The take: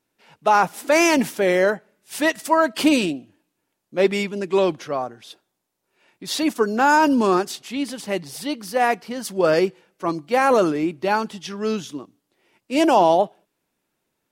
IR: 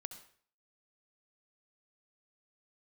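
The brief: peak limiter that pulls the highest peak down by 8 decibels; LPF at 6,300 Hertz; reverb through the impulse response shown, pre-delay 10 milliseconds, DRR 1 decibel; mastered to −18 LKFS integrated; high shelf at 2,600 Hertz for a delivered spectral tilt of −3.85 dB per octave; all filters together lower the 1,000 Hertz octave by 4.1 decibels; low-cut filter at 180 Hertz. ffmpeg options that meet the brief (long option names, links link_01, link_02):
-filter_complex "[0:a]highpass=180,lowpass=6300,equalizer=frequency=1000:width_type=o:gain=-6,highshelf=frequency=2600:gain=5,alimiter=limit=-12.5dB:level=0:latency=1,asplit=2[link_01][link_02];[1:a]atrim=start_sample=2205,adelay=10[link_03];[link_02][link_03]afir=irnorm=-1:irlink=0,volume=2.5dB[link_04];[link_01][link_04]amix=inputs=2:normalize=0,volume=3.5dB"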